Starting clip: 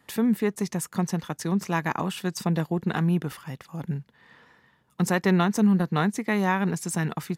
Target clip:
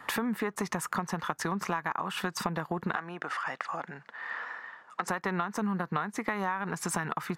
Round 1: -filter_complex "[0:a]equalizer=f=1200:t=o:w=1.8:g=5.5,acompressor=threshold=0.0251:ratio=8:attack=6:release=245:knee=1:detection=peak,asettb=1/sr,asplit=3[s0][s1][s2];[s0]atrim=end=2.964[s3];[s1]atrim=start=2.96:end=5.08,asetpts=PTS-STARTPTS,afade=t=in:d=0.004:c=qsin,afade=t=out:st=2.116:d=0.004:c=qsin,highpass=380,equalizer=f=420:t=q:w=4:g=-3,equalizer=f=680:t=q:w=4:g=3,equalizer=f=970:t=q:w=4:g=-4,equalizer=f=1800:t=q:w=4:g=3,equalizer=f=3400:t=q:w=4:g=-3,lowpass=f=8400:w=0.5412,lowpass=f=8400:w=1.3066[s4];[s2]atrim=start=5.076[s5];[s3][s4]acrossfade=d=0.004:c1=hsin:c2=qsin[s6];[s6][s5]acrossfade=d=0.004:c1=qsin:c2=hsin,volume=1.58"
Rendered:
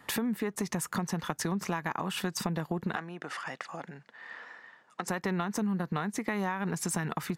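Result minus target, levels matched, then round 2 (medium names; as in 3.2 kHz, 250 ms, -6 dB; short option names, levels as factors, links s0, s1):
1 kHz band -4.0 dB
-filter_complex "[0:a]equalizer=f=1200:t=o:w=1.8:g=17,acompressor=threshold=0.0251:ratio=8:attack=6:release=245:knee=1:detection=peak,asettb=1/sr,asplit=3[s0][s1][s2];[s0]atrim=end=2.964[s3];[s1]atrim=start=2.96:end=5.08,asetpts=PTS-STARTPTS,afade=t=in:d=0.004:c=qsin,afade=t=out:st=2.116:d=0.004:c=qsin,highpass=380,equalizer=f=420:t=q:w=4:g=-3,equalizer=f=680:t=q:w=4:g=3,equalizer=f=970:t=q:w=4:g=-4,equalizer=f=1800:t=q:w=4:g=3,equalizer=f=3400:t=q:w=4:g=-3,lowpass=f=8400:w=0.5412,lowpass=f=8400:w=1.3066[s4];[s2]atrim=start=5.076[s5];[s3][s4]acrossfade=d=0.004:c1=hsin:c2=qsin[s6];[s6][s5]acrossfade=d=0.004:c1=qsin:c2=hsin,volume=1.58"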